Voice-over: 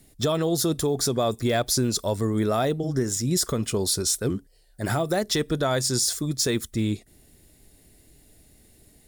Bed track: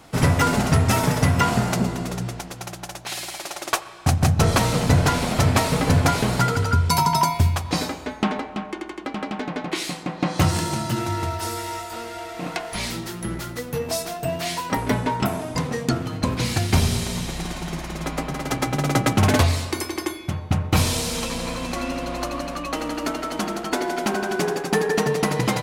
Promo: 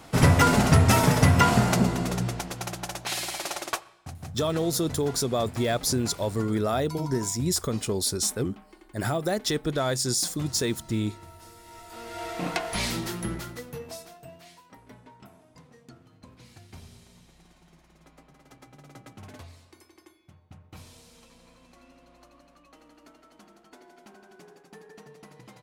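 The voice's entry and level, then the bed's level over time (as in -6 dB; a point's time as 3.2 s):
4.15 s, -2.5 dB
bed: 3.56 s 0 dB
4.07 s -21.5 dB
11.6 s -21.5 dB
12.26 s -0.5 dB
13.14 s -0.5 dB
14.71 s -28 dB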